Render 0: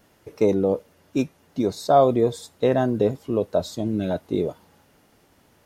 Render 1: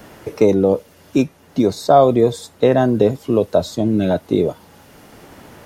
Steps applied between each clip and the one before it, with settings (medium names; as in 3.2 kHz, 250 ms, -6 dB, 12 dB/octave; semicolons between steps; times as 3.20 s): three bands compressed up and down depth 40%; trim +6.5 dB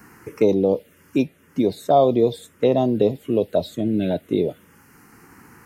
bass shelf 88 Hz -11.5 dB; touch-sensitive phaser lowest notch 590 Hz, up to 1.6 kHz, full sweep at -10 dBFS; trim -2 dB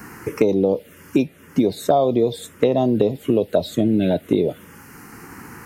compression 6:1, threshold -23 dBFS, peak gain reduction 12 dB; trim +9 dB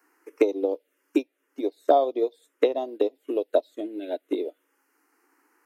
elliptic high-pass 290 Hz, stop band 40 dB; upward expansion 2.5:1, over -30 dBFS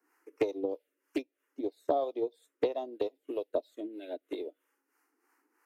harmonic tremolo 3.1 Hz, depth 70%, crossover 480 Hz; loudspeaker Doppler distortion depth 0.15 ms; trim -4.5 dB